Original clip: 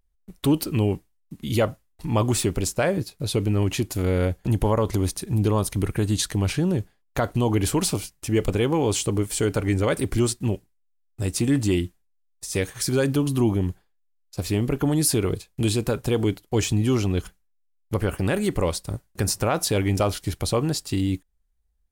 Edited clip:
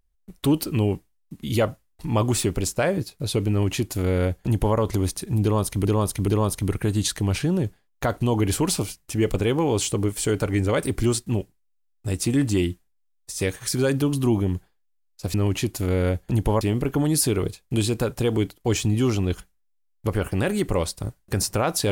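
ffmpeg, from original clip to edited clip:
ffmpeg -i in.wav -filter_complex "[0:a]asplit=5[link_01][link_02][link_03][link_04][link_05];[link_01]atrim=end=5.852[link_06];[link_02]atrim=start=5.418:end=5.852[link_07];[link_03]atrim=start=5.418:end=14.482[link_08];[link_04]atrim=start=3.498:end=4.772[link_09];[link_05]atrim=start=14.478[link_10];[link_06][link_07]acrossfade=duration=0.004:curve1=hsin:curve2=hsin[link_11];[link_11][link_08]acrossfade=duration=0.004:curve1=hsin:curve2=hsin[link_12];[link_12][link_09]acrossfade=duration=0.004:curve1=hsin:curve2=hsin[link_13];[link_13][link_10]acrossfade=duration=0.004:curve1=hsin:curve2=hsin" out.wav

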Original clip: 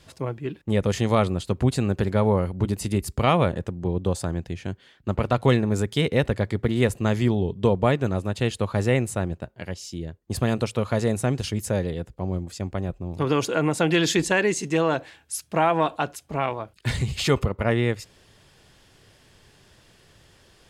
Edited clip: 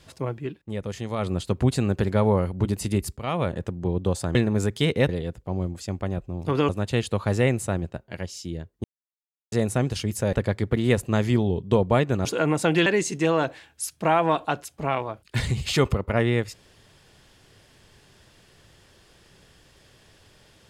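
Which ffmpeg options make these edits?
ffmpeg -i in.wav -filter_complex "[0:a]asplit=12[link_01][link_02][link_03][link_04][link_05][link_06][link_07][link_08][link_09][link_10][link_11][link_12];[link_01]atrim=end=0.59,asetpts=PTS-STARTPTS,afade=type=out:start_time=0.43:duration=0.16:silence=0.354813[link_13];[link_02]atrim=start=0.59:end=1.18,asetpts=PTS-STARTPTS,volume=-9dB[link_14];[link_03]atrim=start=1.18:end=3.17,asetpts=PTS-STARTPTS,afade=type=in:duration=0.16:silence=0.354813,afade=type=out:start_time=1.986:duration=0.004:curve=hsin:silence=0.177828[link_15];[link_04]atrim=start=3.17:end=4.352,asetpts=PTS-STARTPTS,afade=type=in:duration=0.51:silence=0.177828[link_16];[link_05]atrim=start=5.508:end=6.252[link_17];[link_06]atrim=start=11.808:end=13.412[link_18];[link_07]atrim=start=8.168:end=10.32,asetpts=PTS-STARTPTS,afade=type=out:start_time=2.148:duration=0.004:curve=hsin[link_19];[link_08]atrim=start=10.32:end=11,asetpts=PTS-STARTPTS,volume=0[link_20];[link_09]atrim=start=11:end=11.812,asetpts=PTS-STARTPTS,afade=type=in:duration=0.004:curve=hsin[link_21];[link_10]atrim=start=6.248:end=8.172[link_22];[link_11]atrim=start=13.408:end=14.022[link_23];[link_12]atrim=start=14.368[link_24];[link_13][link_14][link_15][link_16]concat=n=4:v=0:a=1[link_25];[link_25][link_17]acrossfade=duration=0.004:curve1=hsin:curve2=hsin[link_26];[link_26][link_18]acrossfade=duration=0.004:curve1=hsin:curve2=hsin[link_27];[link_19][link_20][link_21]concat=n=3:v=0:a=1[link_28];[link_27][link_28]acrossfade=duration=0.004:curve1=hsin:curve2=hsin[link_29];[link_29][link_22]acrossfade=duration=0.004:curve1=hsin:curve2=hsin[link_30];[link_30][link_23]acrossfade=duration=0.004:curve1=hsin:curve2=hsin[link_31];[link_31][link_24]acrossfade=duration=0.004:curve1=hsin:curve2=hsin" out.wav

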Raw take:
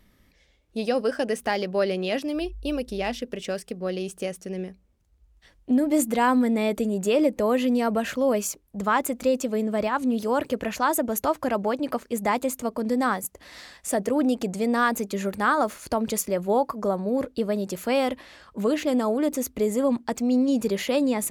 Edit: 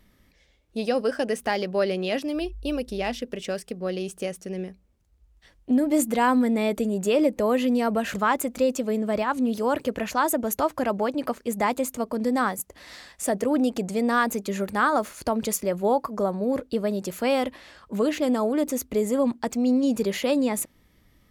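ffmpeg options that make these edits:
ffmpeg -i in.wav -filter_complex "[0:a]asplit=2[link_01][link_02];[link_01]atrim=end=8.142[link_03];[link_02]atrim=start=8.788[link_04];[link_03][link_04]acrossfade=duration=0.004:curve1=hsin:curve2=hsin" out.wav

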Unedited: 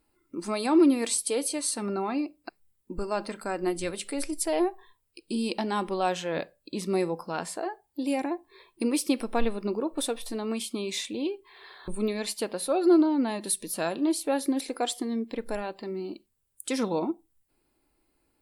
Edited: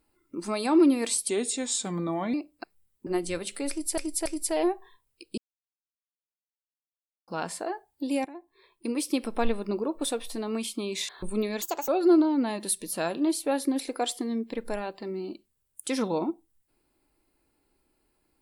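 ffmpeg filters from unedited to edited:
ffmpeg -i in.wav -filter_complex "[0:a]asplit=12[link_01][link_02][link_03][link_04][link_05][link_06][link_07][link_08][link_09][link_10][link_11][link_12];[link_01]atrim=end=1.294[link_13];[link_02]atrim=start=1.29:end=2.19,asetpts=PTS-STARTPTS,asetrate=37926,aresample=44100,atrim=end_sample=46151,asetpts=PTS-STARTPTS[link_14];[link_03]atrim=start=2.186:end=2.922[link_15];[link_04]atrim=start=3.588:end=4.502[link_16];[link_05]atrim=start=4.218:end=4.502[link_17];[link_06]atrim=start=4.218:end=5.34,asetpts=PTS-STARTPTS,afade=type=out:start_time=1.118:duration=0.004:curve=hsin[link_18];[link_07]atrim=start=5.34:end=7.24,asetpts=PTS-STARTPTS,volume=0[link_19];[link_08]atrim=start=7.24:end=8.21,asetpts=PTS-STARTPTS,afade=type=in:duration=0.004:curve=hsin,afade=type=out:start_time=0.966:duration=0.004:curve=hsin:silence=0.16788[link_20];[link_09]atrim=start=8.21:end=11.052,asetpts=PTS-STARTPTS,afade=type=in:duration=1.13:silence=0.16788[link_21];[link_10]atrim=start=11.738:end=12.274[link_22];[link_11]atrim=start=12.27:end=12.69,asetpts=PTS-STARTPTS,asetrate=69678,aresample=44100[link_23];[link_12]atrim=start=12.686[link_24];[link_13][link_14]acrossfade=duration=0.004:curve1=hsin:curve2=hsin[link_25];[link_25][link_15]acrossfade=duration=0.004:curve1=hsin:curve2=hsin[link_26];[link_26][link_16]acrossfade=duration=0.004:curve1=hsin:curve2=hsin[link_27];[link_27][link_17]acrossfade=duration=0.004:curve1=hsin:curve2=hsin[link_28];[link_18][link_19][link_20][link_21]concat=n=4:v=0:a=1[link_29];[link_28][link_29]acrossfade=duration=0.004:curve1=hsin:curve2=hsin[link_30];[link_30][link_22]acrossfade=duration=0.004:curve1=hsin:curve2=hsin[link_31];[link_31][link_23]acrossfade=duration=0.004:curve1=hsin:curve2=hsin[link_32];[link_32][link_24]acrossfade=duration=0.004:curve1=hsin:curve2=hsin" out.wav

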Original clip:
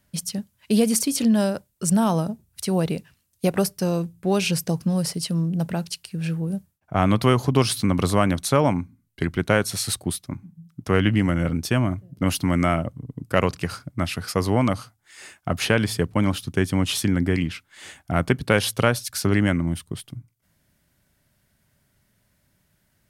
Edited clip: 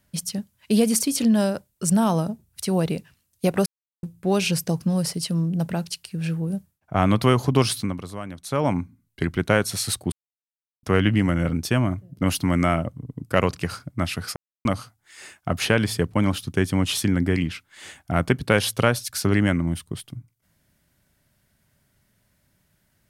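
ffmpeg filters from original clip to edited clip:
ffmpeg -i in.wav -filter_complex "[0:a]asplit=9[link_01][link_02][link_03][link_04][link_05][link_06][link_07][link_08][link_09];[link_01]atrim=end=3.66,asetpts=PTS-STARTPTS,afade=type=out:start_time=3.656:duration=0.004:curve=hsin[link_10];[link_02]atrim=start=3.66:end=4.03,asetpts=PTS-STARTPTS,volume=0[link_11];[link_03]atrim=start=4.03:end=8.02,asetpts=PTS-STARTPTS,afade=type=in:duration=0.004:curve=hsin,afade=type=out:start_time=3.64:duration=0.35:silence=0.188365[link_12];[link_04]atrim=start=8.02:end=8.41,asetpts=PTS-STARTPTS,volume=-14.5dB[link_13];[link_05]atrim=start=8.41:end=10.12,asetpts=PTS-STARTPTS,afade=type=in:duration=0.35:silence=0.188365,afade=type=out:start_time=1.706:duration=0.004:curve=hsin[link_14];[link_06]atrim=start=10.12:end=10.83,asetpts=PTS-STARTPTS,volume=0[link_15];[link_07]atrim=start=10.83:end=14.36,asetpts=PTS-STARTPTS,afade=type=in:duration=0.004:curve=hsin,afade=type=out:start_time=3.526:duration=0.004:curve=hsin[link_16];[link_08]atrim=start=14.36:end=14.65,asetpts=PTS-STARTPTS,volume=0[link_17];[link_09]atrim=start=14.65,asetpts=PTS-STARTPTS,afade=type=in:duration=0.004:curve=hsin[link_18];[link_10][link_11][link_12][link_13][link_14][link_15][link_16][link_17][link_18]concat=n=9:v=0:a=1" out.wav

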